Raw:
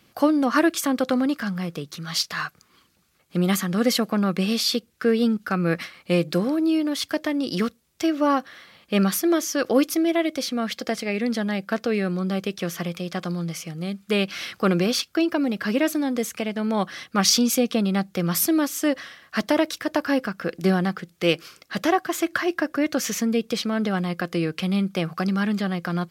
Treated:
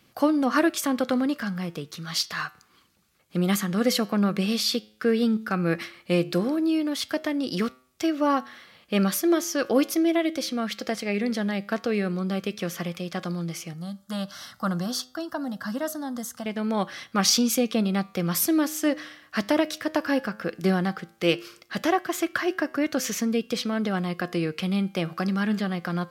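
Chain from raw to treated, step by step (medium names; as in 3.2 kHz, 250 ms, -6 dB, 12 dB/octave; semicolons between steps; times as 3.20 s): 13.73–16.46 s: static phaser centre 1 kHz, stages 4; flange 0.13 Hz, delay 7.7 ms, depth 2.3 ms, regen +90%; trim +2.5 dB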